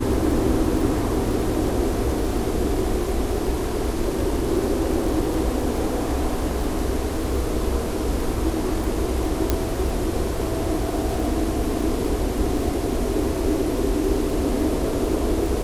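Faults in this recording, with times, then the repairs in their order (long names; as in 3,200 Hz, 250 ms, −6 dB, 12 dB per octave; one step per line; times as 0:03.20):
surface crackle 21 per second −27 dBFS
0:09.50: click −5 dBFS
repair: click removal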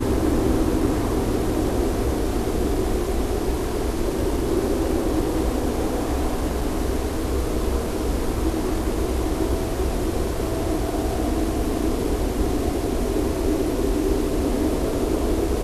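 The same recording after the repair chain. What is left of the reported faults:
0:09.50: click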